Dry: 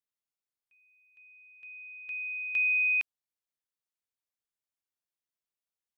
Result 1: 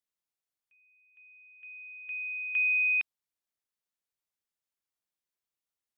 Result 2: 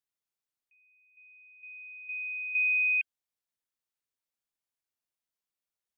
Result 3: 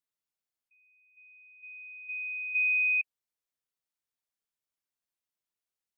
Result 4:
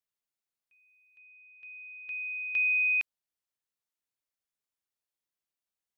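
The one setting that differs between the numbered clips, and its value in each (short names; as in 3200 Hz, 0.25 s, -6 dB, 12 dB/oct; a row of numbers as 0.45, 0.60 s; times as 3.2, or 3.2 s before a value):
spectral gate, under each frame's peak: -45, -30, -15, -60 dB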